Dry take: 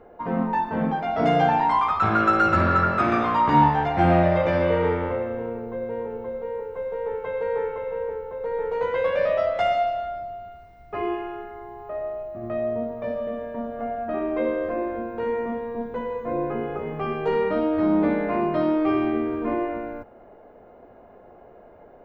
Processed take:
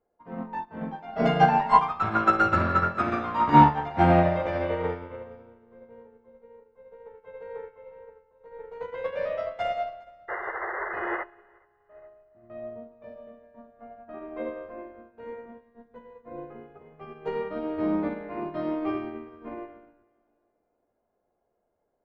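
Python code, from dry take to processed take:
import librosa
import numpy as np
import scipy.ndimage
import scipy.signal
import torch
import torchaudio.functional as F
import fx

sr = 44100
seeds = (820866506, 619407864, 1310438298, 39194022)

y = fx.comb(x, sr, ms=4.9, depth=0.95, at=(1.11, 1.77), fade=0.02)
y = fx.spec_paint(y, sr, seeds[0], shape='noise', start_s=10.28, length_s=0.96, low_hz=330.0, high_hz=2100.0, level_db=-23.0)
y = fx.dynamic_eq(y, sr, hz=1100.0, q=1.5, threshold_db=-38.0, ratio=4.0, max_db=3, at=(13.45, 14.83))
y = fx.echo_feedback(y, sr, ms=417, feedback_pct=35, wet_db=-13)
y = fx.upward_expand(y, sr, threshold_db=-35.0, expansion=2.5)
y = y * 10.0 ** (3.0 / 20.0)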